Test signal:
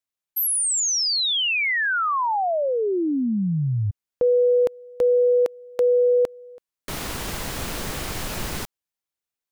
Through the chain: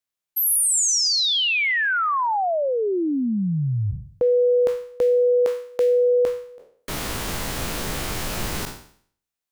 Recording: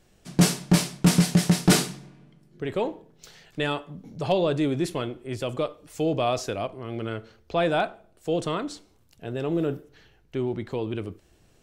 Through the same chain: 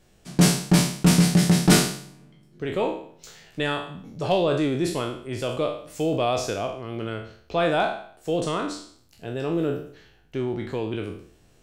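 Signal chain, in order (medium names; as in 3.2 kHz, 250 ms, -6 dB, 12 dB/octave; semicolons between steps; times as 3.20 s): spectral sustain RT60 0.56 s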